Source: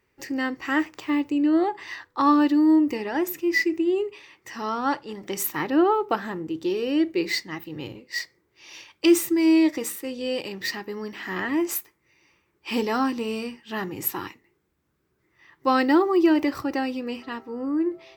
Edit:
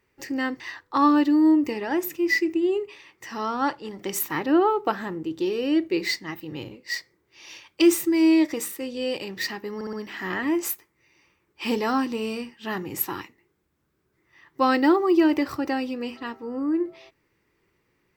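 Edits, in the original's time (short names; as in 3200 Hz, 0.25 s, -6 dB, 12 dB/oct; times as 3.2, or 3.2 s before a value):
0.6–1.84 cut
10.99 stutter 0.06 s, 4 plays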